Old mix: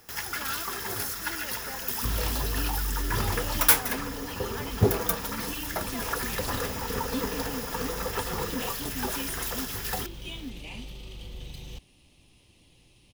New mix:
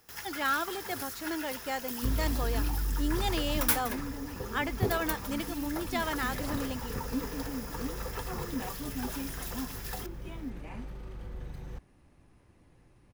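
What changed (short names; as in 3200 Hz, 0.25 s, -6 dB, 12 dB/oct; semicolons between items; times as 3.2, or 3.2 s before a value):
speech +9.5 dB; first sound -8.0 dB; second sound: add resonant high shelf 2200 Hz -11.5 dB, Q 3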